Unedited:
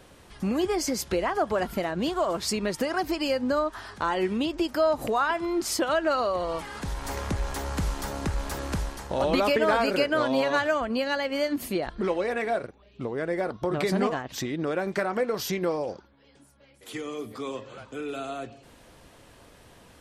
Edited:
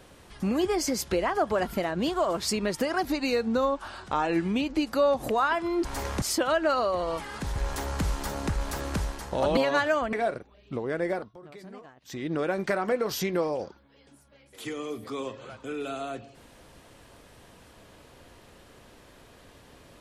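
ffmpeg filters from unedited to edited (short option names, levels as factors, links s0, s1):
-filter_complex "[0:a]asplit=10[s0][s1][s2][s3][s4][s5][s6][s7][s8][s9];[s0]atrim=end=3.054[s10];[s1]atrim=start=3.05:end=5.01,asetpts=PTS-STARTPTS,asetrate=39690,aresample=44100[s11];[s2]atrim=start=5.006:end=5.632[s12];[s3]atrim=start=6.968:end=7.342[s13];[s4]atrim=start=5.628:end=6.972[s14];[s5]atrim=start=7.338:end=9.352[s15];[s6]atrim=start=10.358:end=10.922[s16];[s7]atrim=start=12.408:end=13.62,asetpts=PTS-STARTPTS,afade=t=out:st=0.972:d=0.24:silence=0.1[s17];[s8]atrim=start=13.62:end=14.33,asetpts=PTS-STARTPTS,volume=0.1[s18];[s9]atrim=start=14.33,asetpts=PTS-STARTPTS,afade=t=in:d=0.24:silence=0.1[s19];[s10][s11]acrossfade=d=0.004:c1=hsin:c2=hsin[s20];[s20][s12]acrossfade=d=0.004:c1=hsin:c2=hsin[s21];[s21][s13]acrossfade=d=0.004:c1=hsin:c2=hsin[s22];[s22][s14]acrossfade=d=0.004:c1=hsin:c2=hsin[s23];[s23][s15]acrossfade=d=0.004:c1=hsin:c2=hsin[s24];[s24][s16]acrossfade=d=0.004:c1=hsin:c2=hsin[s25];[s17][s18][s19]concat=n=3:v=0:a=1[s26];[s25][s26]acrossfade=d=0.004:c1=hsin:c2=hsin"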